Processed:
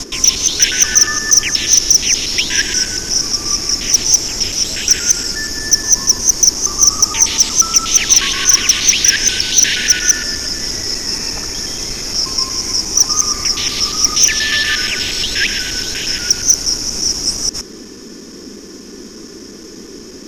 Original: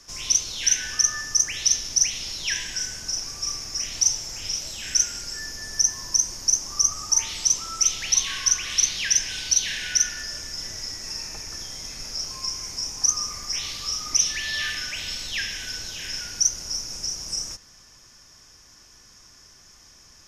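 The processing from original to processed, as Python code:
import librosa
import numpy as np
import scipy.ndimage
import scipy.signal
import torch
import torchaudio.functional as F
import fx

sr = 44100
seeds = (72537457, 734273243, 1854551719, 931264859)

y = fx.local_reverse(x, sr, ms=119.0)
y = fx.dmg_noise_band(y, sr, seeds[0], low_hz=190.0, high_hz=430.0, level_db=-48.0)
y = fx.fold_sine(y, sr, drive_db=6, ceiling_db=-5.0)
y = y * librosa.db_to_amplitude(3.5)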